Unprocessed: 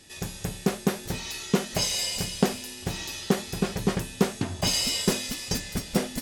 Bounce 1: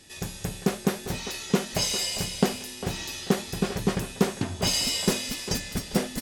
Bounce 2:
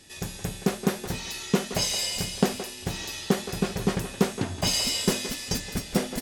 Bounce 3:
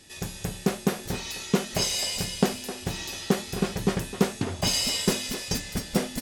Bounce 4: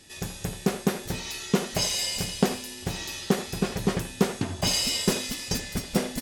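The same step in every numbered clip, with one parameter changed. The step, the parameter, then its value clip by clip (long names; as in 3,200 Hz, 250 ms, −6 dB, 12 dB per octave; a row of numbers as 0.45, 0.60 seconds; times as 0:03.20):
far-end echo of a speakerphone, delay time: 400, 170, 260, 80 milliseconds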